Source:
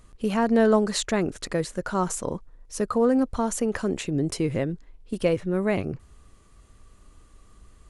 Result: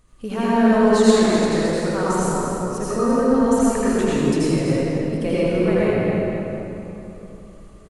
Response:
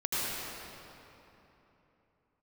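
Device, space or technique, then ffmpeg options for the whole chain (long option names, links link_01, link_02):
cave: -filter_complex "[0:a]aecho=1:1:255:0.355[link_01];[1:a]atrim=start_sample=2205[link_02];[link_01][link_02]afir=irnorm=-1:irlink=0,volume=-3.5dB"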